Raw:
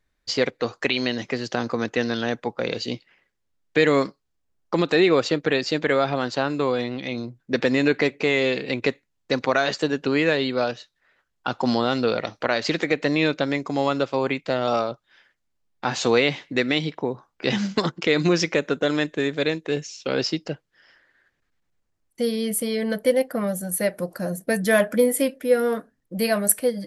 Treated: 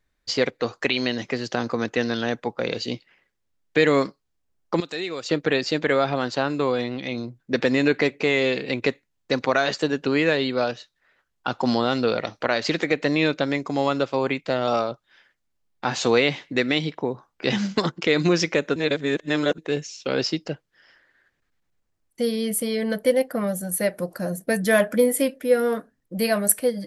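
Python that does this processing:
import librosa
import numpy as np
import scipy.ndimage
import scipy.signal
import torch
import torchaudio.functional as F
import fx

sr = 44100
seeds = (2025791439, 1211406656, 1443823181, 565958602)

y = fx.pre_emphasis(x, sr, coefficient=0.8, at=(4.8, 5.29))
y = fx.edit(y, sr, fx.reverse_span(start_s=18.76, length_s=0.82), tone=tone)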